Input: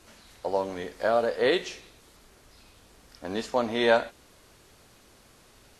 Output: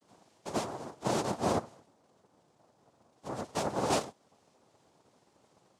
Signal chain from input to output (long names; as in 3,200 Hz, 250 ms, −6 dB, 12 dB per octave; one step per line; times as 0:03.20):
vocoder with an arpeggio as carrier major triad, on F3, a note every 126 ms
0:01.58–0:03.35: low-pass filter 1,300 Hz 12 dB per octave
cochlear-implant simulation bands 2
level −6 dB